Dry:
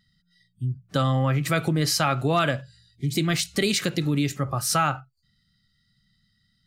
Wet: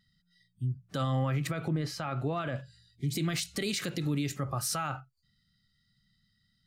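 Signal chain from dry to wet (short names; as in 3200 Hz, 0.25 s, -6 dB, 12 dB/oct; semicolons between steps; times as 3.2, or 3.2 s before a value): limiter -18 dBFS, peak gain reduction 9 dB; 1.47–2.56 bell 12000 Hz -14 dB 2.3 oct; gain -4.5 dB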